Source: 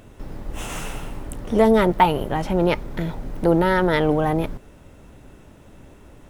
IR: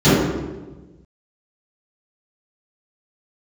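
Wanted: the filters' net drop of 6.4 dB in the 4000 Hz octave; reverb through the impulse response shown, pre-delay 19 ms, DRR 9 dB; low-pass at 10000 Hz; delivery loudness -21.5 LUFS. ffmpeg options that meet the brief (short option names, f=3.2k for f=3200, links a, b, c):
-filter_complex "[0:a]lowpass=10k,equalizer=f=4k:t=o:g=-9,asplit=2[a][b];[1:a]atrim=start_sample=2205,adelay=19[c];[b][c]afir=irnorm=-1:irlink=0,volume=-37dB[d];[a][d]amix=inputs=2:normalize=0,volume=-3dB"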